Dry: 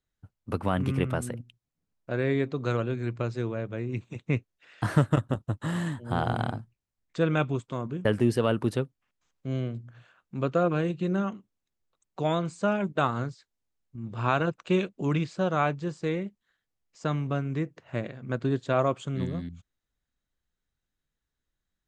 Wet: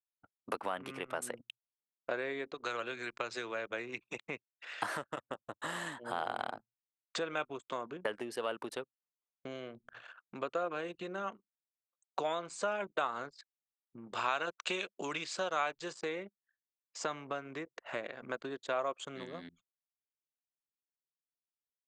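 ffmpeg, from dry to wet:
-filter_complex "[0:a]asettb=1/sr,asplit=3[a][b][c];[a]atrim=end=2.544[d];[b]atrim=start=2.54:end=4.14,asetpts=PTS-STARTPTS,afade=t=in:d=0.004:c=qsin,afade=t=out:st=1.596:d=0.004:c=qsin,acrossover=split=110|1300[e][f][g];[e]acompressor=threshold=-48dB:ratio=4[h];[f]acompressor=threshold=-39dB:ratio=4[i];[g]acompressor=threshold=-42dB:ratio=4[j];[h][i][j]amix=inputs=3:normalize=0[k];[c]atrim=start=4.136[l];[d][k]acrossfade=d=0.004:c1=hsin:c2=qsin[m];[m][l]acrossfade=d=0.004:c1=qsin:c2=hsin,asettb=1/sr,asplit=3[n][o][p];[n]atrim=end=14.124[q];[o]atrim=start=14.12:end=15.93,asetpts=PTS-STARTPTS,afade=t=in:d=0.004:c=qsin,afade=t=out:st=1.806:d=0.004:c=qsin,highshelf=f=2.2k:g=9[r];[p]atrim=start=15.926[s];[q][r]acrossfade=d=0.004:c1=hsin:c2=qsin[t];[t][s]acrossfade=d=0.004:c1=qsin:c2=hsin,acompressor=threshold=-38dB:ratio=6,highpass=560,anlmdn=0.0000398,volume=9.5dB"

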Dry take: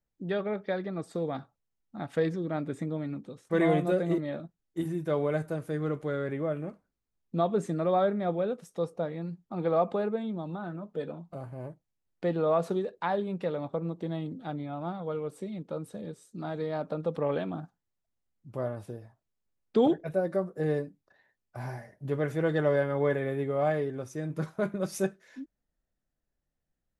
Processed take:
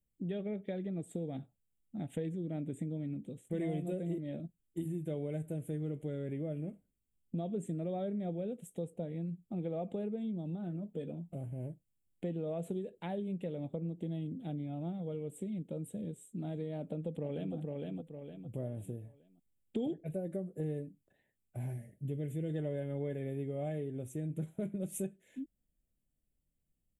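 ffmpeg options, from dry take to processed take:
-filter_complex "[0:a]asplit=2[a][b];[b]afade=t=in:st=16.78:d=0.01,afade=t=out:st=17.55:d=0.01,aecho=0:1:460|920|1380|1840:0.530884|0.18581|0.0650333|0.0227617[c];[a][c]amix=inputs=2:normalize=0,asettb=1/sr,asplit=3[d][e][f];[d]atrim=end=21.734[g];[e]atrim=start=21.73:end=22.5,asetpts=PTS-STARTPTS,afade=t=in:d=0.004:c=qsin,afade=t=out:st=0.766:d=0.004:c=qsin,equalizer=f=990:t=o:w=1.2:g=-13.5[h];[f]atrim=start=22.496[i];[g][h]acrossfade=d=0.004:c1=hsin:c2=qsin[j];[j][i]acrossfade=d=0.004:c1=qsin:c2=hsin,firequalizer=gain_entry='entry(210,0);entry(390,-5);entry(690,-10);entry(1100,-25);entry(2200,-8);entry(3200,-4);entry(4900,-29);entry(7500,1)':delay=0.05:min_phase=1,acompressor=threshold=-38dB:ratio=3,volume=2dB"

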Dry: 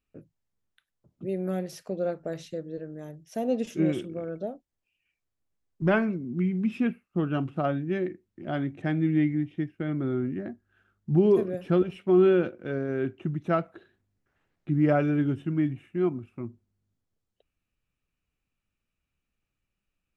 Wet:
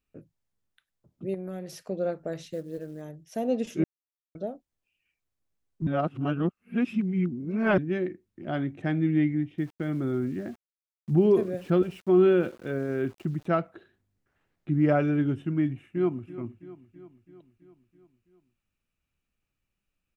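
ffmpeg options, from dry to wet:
-filter_complex "[0:a]asettb=1/sr,asplit=3[a][b][c];[a]atrim=end=1.344[d];[b]atrim=start=1.34:end=1.81,asetpts=PTS-STARTPTS,afade=t=in:d=0.004:c=qsin,afade=t=out:st=0.466:d=0.004:c=qsin,acompressor=threshold=-32dB:ratio=6:attack=3.2:release=140:knee=1:detection=peak[e];[c]atrim=start=1.806[f];[d][e]acrossfade=d=0.004:c1=hsin:c2=qsin[g];[g][f]acrossfade=d=0.004:c1=qsin:c2=hsin,asplit=3[h][i][j];[h]afade=t=out:st=2.45:d=0.02[k];[i]acrusher=bits=7:mode=log:mix=0:aa=0.000001,afade=t=in:st=2.45:d=0.02,afade=t=out:st=3.01:d=0.02[l];[j]afade=t=in:st=3.01:d=0.02[m];[k][l][m]amix=inputs=3:normalize=0,asettb=1/sr,asplit=3[n][o][p];[n]atrim=end=9.584[q];[o]atrim=start=9.58:end=13.46,asetpts=PTS-STARTPTS,afade=t=in:d=0.004:c=qsin,afade=t=out:st=3.876:d=0.004:c=qsin,aeval=exprs='val(0)*gte(abs(val(0)),0.00335)':c=same[r];[p]atrim=start=13.456[s];[q][r]acrossfade=d=0.004:c1=hsin:c2=qsin[t];[t][s]acrossfade=d=0.004:c1=qsin:c2=hsin,asplit=2[u][v];[v]afade=t=in:st=15.63:d=0.01,afade=t=out:st=16.29:d=0.01,aecho=0:1:330|660|990|1320|1650|1980|2310:0.158489|0.103018|0.0669617|0.0435251|0.0282913|0.0183894|0.0119531[w];[u][w]amix=inputs=2:normalize=0,asplit=5[x][y][z][aa][ab];[x]atrim=end=3.84,asetpts=PTS-STARTPTS,afade=t=out:st=3.836:d=0.004:c=hsin[ac];[y]atrim=start=3.84:end=4.35,asetpts=PTS-STARTPTS,volume=0[ad];[z]atrim=start=4.35:end=5.872,asetpts=PTS-STARTPTS,afade=t=in:d=0.004:c=hsin[ae];[aa]atrim=start=5.868:end=7.782,asetpts=PTS-STARTPTS,areverse[af];[ab]atrim=start=7.778[ag];[ac][ad][ae]concat=n=3:v=0:a=1[ah];[ah][af]acrossfade=d=0.004:c1=hsin:c2=hsin[ai];[ai][ag]acrossfade=d=0.004:c1=hsin:c2=hsin"

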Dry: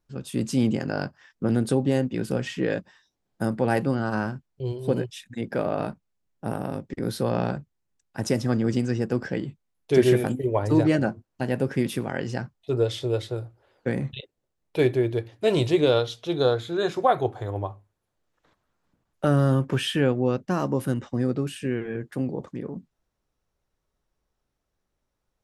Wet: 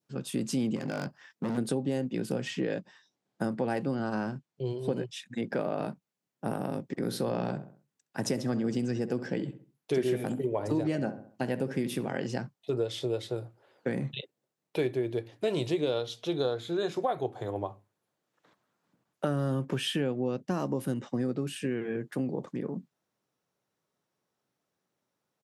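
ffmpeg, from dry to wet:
-filter_complex "[0:a]asettb=1/sr,asplit=3[a][b][c];[a]atrim=end=0.764[d];[b]atrim=start=0.76:end=1.58,asetpts=PTS-STARTPTS,afade=t=in:d=0.004:c=qsin,afade=t=out:st=0.816:d=0.004:c=qsin,asoftclip=type=hard:threshold=-25.5dB[e];[c]atrim=start=1.576[f];[d][e]acrossfade=d=0.004:c1=hsin:c2=qsin[g];[g][f]acrossfade=d=0.004:c1=qsin:c2=hsin,asettb=1/sr,asplit=3[h][i][j];[h]atrim=end=2.504[k];[i]atrim=start=2.5:end=5.6,asetpts=PTS-STARTPTS,afade=t=in:d=0.004:c=qsin,afade=t=out:st=3.096:d=0.004:c=qsin,lowpass=8.6k[l];[j]atrim=start=5.596[m];[k][l]acrossfade=d=0.004:c1=hsin:c2=qsin[n];[n][m]acrossfade=d=0.004:c1=qsin:c2=hsin,asplit=3[o][p][q];[o]afade=t=out:st=6.93:d=0.02[r];[p]asplit=2[s][t];[t]adelay=66,lowpass=f=2.1k:p=1,volume=-13dB,asplit=2[u][v];[v]adelay=66,lowpass=f=2.1k:p=1,volume=0.38,asplit=2[w][x];[x]adelay=66,lowpass=f=2.1k:p=1,volume=0.38,asplit=2[y][z];[z]adelay=66,lowpass=f=2.1k:p=1,volume=0.38[aa];[s][u][w][y][aa]amix=inputs=5:normalize=0,afade=t=in:st=6.93:d=0.02,afade=t=out:st=12.26:d=0.02[ab];[q]afade=t=in:st=12.26:d=0.02[ac];[r][ab][ac]amix=inputs=3:normalize=0,highpass=f=130:w=0.5412,highpass=f=130:w=1.3066,adynamicequalizer=threshold=0.00708:dfrequency=1400:dqfactor=1.2:tfrequency=1400:tqfactor=1.2:attack=5:release=100:ratio=0.375:range=2.5:mode=cutabove:tftype=bell,acompressor=threshold=-28dB:ratio=3"

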